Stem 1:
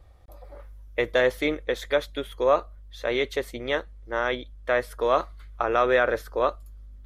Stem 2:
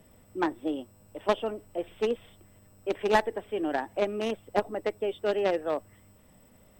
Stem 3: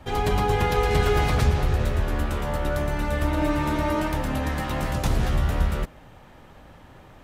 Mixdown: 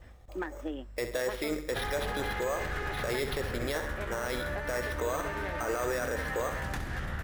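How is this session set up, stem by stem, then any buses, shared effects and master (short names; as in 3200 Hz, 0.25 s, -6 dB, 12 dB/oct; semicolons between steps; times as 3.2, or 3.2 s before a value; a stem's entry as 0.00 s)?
-0.5 dB, 0.00 s, no bus, no send, echo send -11.5 dB, limiter -19.5 dBFS, peak gain reduction 11 dB; sample-and-hold 6×
+1.0 dB, 0.00 s, bus A, no send, no echo send, gate with hold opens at -47 dBFS; steep low-pass 6500 Hz; auto duck -11 dB, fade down 1.95 s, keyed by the first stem
+1.0 dB, 1.70 s, bus A, no send, echo send -12.5 dB, one-sided fold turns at -19.5 dBFS; compressor 2:1, threshold -39 dBFS, peak gain reduction 13 dB
bus A: 0.0 dB, bell 1700 Hz +13 dB 0.72 oct; compressor, threshold -32 dBFS, peak gain reduction 12.5 dB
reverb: off
echo: feedback echo 66 ms, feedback 47%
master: limiter -22.5 dBFS, peak gain reduction 6 dB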